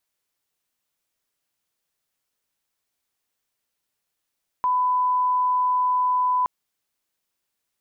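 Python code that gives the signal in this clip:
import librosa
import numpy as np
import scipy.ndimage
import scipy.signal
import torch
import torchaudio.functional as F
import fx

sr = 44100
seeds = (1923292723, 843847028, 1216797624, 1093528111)

y = fx.lineup_tone(sr, length_s=1.82, level_db=-18.0)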